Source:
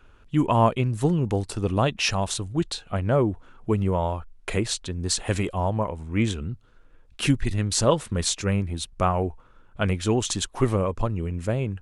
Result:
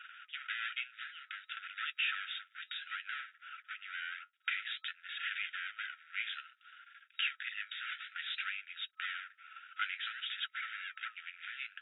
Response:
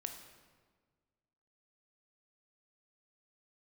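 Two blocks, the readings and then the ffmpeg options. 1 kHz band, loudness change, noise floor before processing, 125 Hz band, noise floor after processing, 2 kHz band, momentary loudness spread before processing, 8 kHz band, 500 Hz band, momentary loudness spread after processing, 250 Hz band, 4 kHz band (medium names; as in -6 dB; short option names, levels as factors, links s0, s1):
-19.0 dB, -14.5 dB, -53 dBFS, under -40 dB, -72 dBFS, -1.5 dB, 7 LU, under -40 dB, under -40 dB, 11 LU, under -40 dB, -8.0 dB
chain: -filter_complex "[0:a]asplit=2[s0][s1];[s1]highpass=f=720:p=1,volume=14.1,asoftclip=type=tanh:threshold=0.473[s2];[s0][s2]amix=inputs=2:normalize=0,lowpass=f=2100:p=1,volume=0.501,acompressor=threshold=0.02:ratio=2,aeval=exprs='max(val(0),0)':c=same,afftfilt=real='re*between(b*sr/4096,1300,3800)':imag='im*between(b*sr/4096,1300,3800)':win_size=4096:overlap=0.75,flanger=delay=3.5:depth=7.4:regen=-58:speed=0.57:shape=sinusoidal,volume=2"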